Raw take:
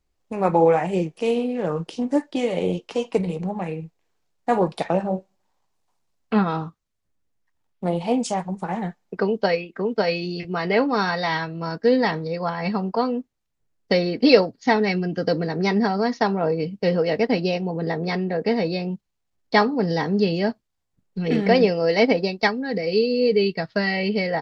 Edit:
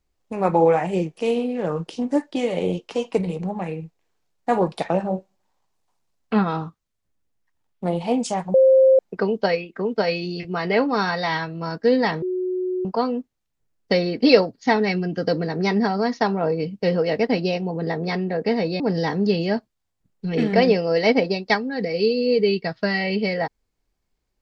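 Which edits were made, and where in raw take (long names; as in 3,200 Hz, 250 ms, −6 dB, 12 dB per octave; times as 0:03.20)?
0:08.54–0:08.99: beep over 528 Hz −10 dBFS
0:12.22–0:12.85: beep over 367 Hz −21.5 dBFS
0:18.80–0:19.73: remove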